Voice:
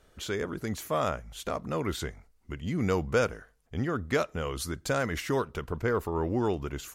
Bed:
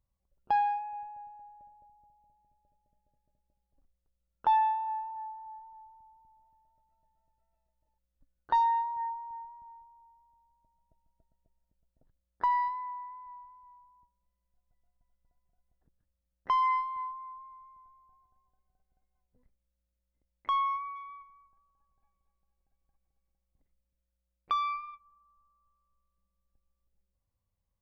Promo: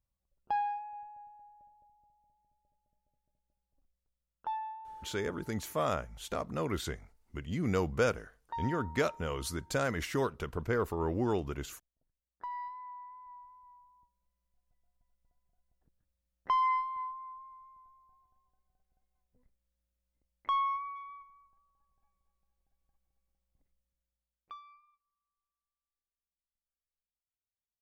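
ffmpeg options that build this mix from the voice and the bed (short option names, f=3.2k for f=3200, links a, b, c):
-filter_complex "[0:a]adelay=4850,volume=-3dB[a];[1:a]volume=7dB,afade=t=out:st=4.01:d=0.59:silence=0.375837,afade=t=in:st=12.49:d=1.1:silence=0.251189,afade=t=out:st=23.59:d=1.03:silence=0.0707946[b];[a][b]amix=inputs=2:normalize=0"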